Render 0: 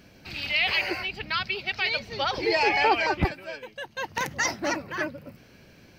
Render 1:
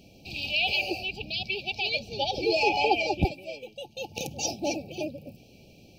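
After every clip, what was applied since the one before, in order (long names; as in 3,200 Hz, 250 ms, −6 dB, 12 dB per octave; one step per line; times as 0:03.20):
brick-wall band-stop 870–2,300 Hz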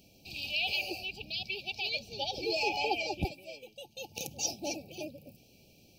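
high-shelf EQ 5,200 Hz +12 dB
level −8.5 dB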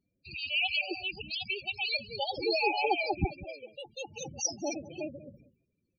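noise gate with hold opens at −48 dBFS
single-tap delay 191 ms −17 dB
spectral peaks only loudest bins 16
level +4 dB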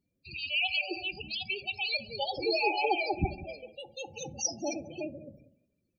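convolution reverb RT60 0.90 s, pre-delay 14 ms, DRR 13.5 dB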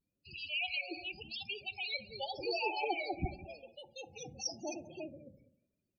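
pitch vibrato 0.88 Hz 86 cents
level −7 dB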